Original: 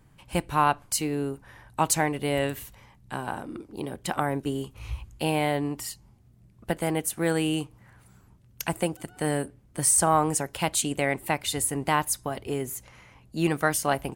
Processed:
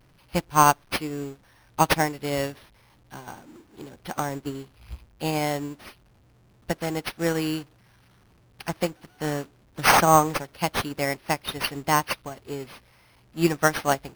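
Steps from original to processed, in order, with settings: zero-crossing step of -32 dBFS; careless resampling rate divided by 6×, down none, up hold; upward expander 2.5:1, over -36 dBFS; gain +5.5 dB

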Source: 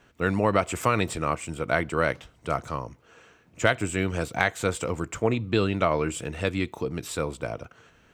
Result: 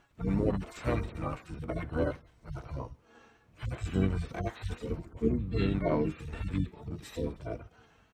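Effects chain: median-filter separation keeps harmonic; harmoniser -12 st -3 dB, -7 st -6 dB, -3 st -10 dB; gain -4 dB

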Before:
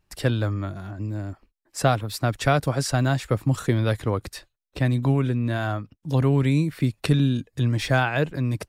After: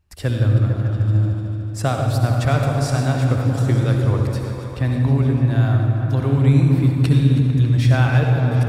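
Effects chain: reverse delay 0.195 s, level -13 dB; bell 81 Hz +13.5 dB 0.87 oct; repeats that get brighter 0.149 s, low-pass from 400 Hz, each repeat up 1 oct, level -3 dB; on a send at -3 dB: reverb RT60 1.6 s, pre-delay 58 ms; on the sum: gain -2.5 dB

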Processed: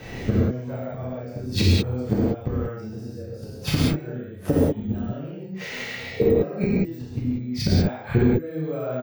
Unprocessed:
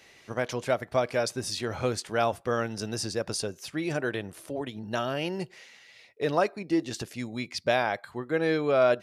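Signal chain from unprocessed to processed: careless resampling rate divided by 2×, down none, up zero stuff; rotary speaker horn 1 Hz; tilt -4 dB/oct; doubler 32 ms -3 dB; narrowing echo 66 ms, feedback 75%, band-pass 2200 Hz, level -16 dB; flipped gate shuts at -22 dBFS, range -33 dB; reverb, pre-delay 3 ms, DRR -7 dB; maximiser +24 dB; gain -8 dB

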